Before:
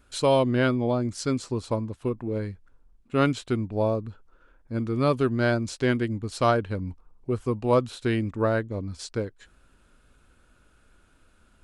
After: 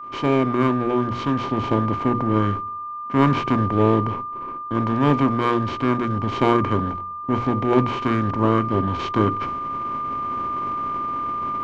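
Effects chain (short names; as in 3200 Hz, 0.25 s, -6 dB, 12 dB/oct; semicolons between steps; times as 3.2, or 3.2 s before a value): per-bin compression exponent 0.4; gate -32 dBFS, range -20 dB; notches 60/120/180/240/300/360/420/480 Hz; formant shift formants -5 st; LPF 2600 Hz 12 dB/oct; bell 600 Hz -5 dB 0.81 oct; in parallel at -8 dB: hard clip -22 dBFS, distortion -7 dB; on the sum: whine 1200 Hz -25 dBFS; vocal rider within 4 dB 2 s; on a send at -22.5 dB: bell 71 Hz +13 dB 1.8 oct + reverb RT60 0.75 s, pre-delay 3 ms; on the sum: three-band expander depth 40%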